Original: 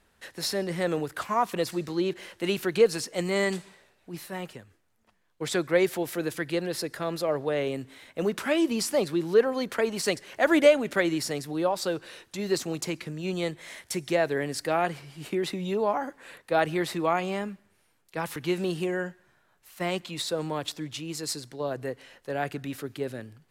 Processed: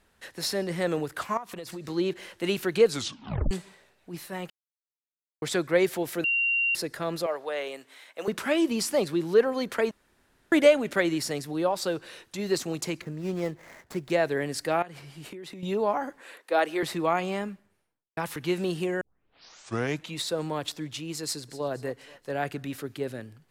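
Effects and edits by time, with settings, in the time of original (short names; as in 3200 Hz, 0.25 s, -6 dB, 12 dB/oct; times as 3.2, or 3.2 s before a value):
1.37–1.85 compressor 12:1, threshold -34 dBFS
2.87 tape stop 0.64 s
4.5–5.42 mute
6.24–6.75 bleep 2760 Hz -22 dBFS
7.26–8.28 HPF 600 Hz
9.91–10.52 room tone
13.01–14.1 median filter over 15 samples
14.82–15.63 compressor 10:1, threshold -38 dBFS
16.21–16.83 HPF 280 Hz 24 dB/oct
17.45–18.17 studio fade out
19.01 tape start 1.15 s
21.24–21.68 echo throw 0.24 s, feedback 45%, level -16.5 dB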